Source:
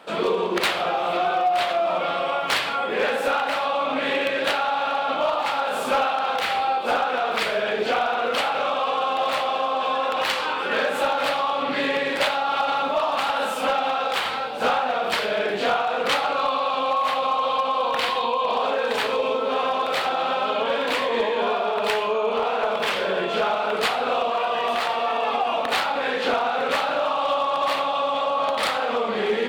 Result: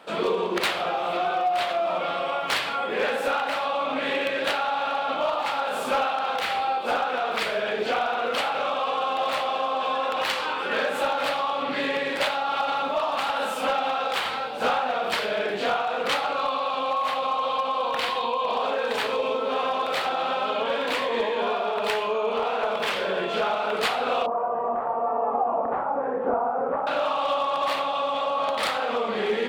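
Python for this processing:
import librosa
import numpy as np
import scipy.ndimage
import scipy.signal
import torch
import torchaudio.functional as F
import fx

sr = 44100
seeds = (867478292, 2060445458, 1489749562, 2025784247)

y = fx.lowpass(x, sr, hz=1100.0, slope=24, at=(24.26, 26.87))
y = fx.rider(y, sr, range_db=10, speed_s=2.0)
y = y * 10.0 ** (-2.5 / 20.0)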